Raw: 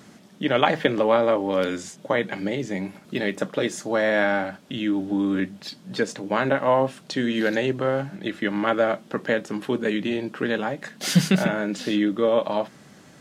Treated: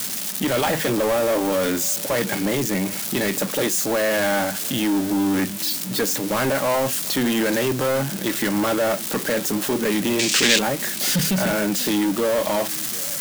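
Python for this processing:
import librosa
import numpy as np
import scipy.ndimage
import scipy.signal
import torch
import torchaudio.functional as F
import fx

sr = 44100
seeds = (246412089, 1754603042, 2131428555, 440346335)

p1 = x + 0.5 * 10.0 ** (-10.5 / 20.0) * np.diff(np.sign(x), prepend=np.sign(x[:1]))
p2 = fx.over_compress(p1, sr, threshold_db=-22.0, ratio=-1.0)
p3 = p1 + F.gain(torch.from_numpy(p2), 1.0).numpy()
p4 = 10.0 ** (-16.5 / 20.0) * np.tanh(p3 / 10.0 ** (-16.5 / 20.0))
p5 = fx.band_shelf(p4, sr, hz=4000.0, db=15.0, octaves=2.3, at=(10.19, 10.59))
y = p5 + 10.0 ** (-21.5 / 20.0) * np.pad(p5, (int(739 * sr / 1000.0), 0))[:len(p5)]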